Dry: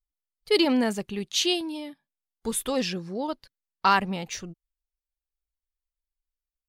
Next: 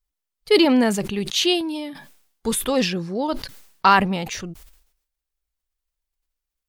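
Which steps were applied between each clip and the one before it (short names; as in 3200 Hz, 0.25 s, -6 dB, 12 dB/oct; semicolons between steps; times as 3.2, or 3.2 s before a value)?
dynamic EQ 6600 Hz, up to -5 dB, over -39 dBFS, Q 0.84; sustainer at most 84 dB/s; gain +6 dB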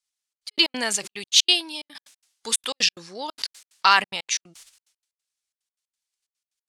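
weighting filter ITU-R 468; step gate "xxxx.x.x." 182 bpm -60 dB; gain -4 dB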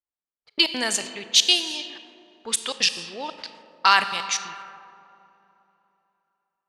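Schroeder reverb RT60 3.3 s, combs from 28 ms, DRR 10 dB; low-pass opened by the level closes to 850 Hz, open at -20 dBFS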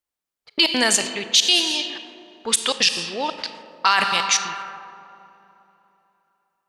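limiter -12 dBFS, peak gain reduction 10 dB; gain +7.5 dB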